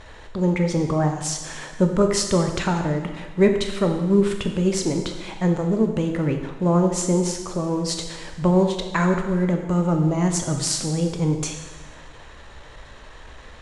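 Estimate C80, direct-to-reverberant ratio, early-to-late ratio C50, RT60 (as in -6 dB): 8.0 dB, 4.0 dB, 6.5 dB, 1.2 s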